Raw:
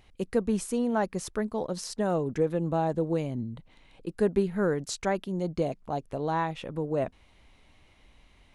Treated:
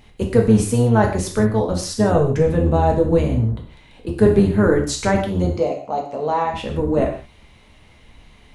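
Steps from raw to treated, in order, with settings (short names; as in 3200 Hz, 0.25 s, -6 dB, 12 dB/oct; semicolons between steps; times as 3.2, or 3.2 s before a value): octaver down 1 oct, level 0 dB; 5.53–6.54 speaker cabinet 310–7100 Hz, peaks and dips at 380 Hz -5 dB, 1600 Hz -9 dB, 3500 Hz -9 dB; non-linear reverb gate 0.2 s falling, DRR 0.5 dB; gain +7.5 dB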